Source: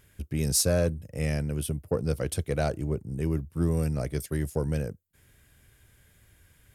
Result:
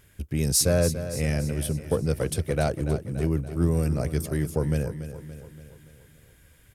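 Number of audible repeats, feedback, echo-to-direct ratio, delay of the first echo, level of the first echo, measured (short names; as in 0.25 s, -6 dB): 5, 54%, -10.0 dB, 0.286 s, -11.5 dB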